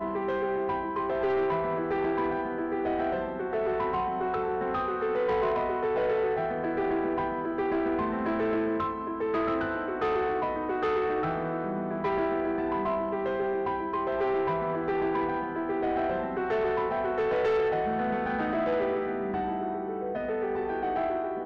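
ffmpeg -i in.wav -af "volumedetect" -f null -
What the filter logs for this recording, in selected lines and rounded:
mean_volume: -28.6 dB
max_volume: -22.2 dB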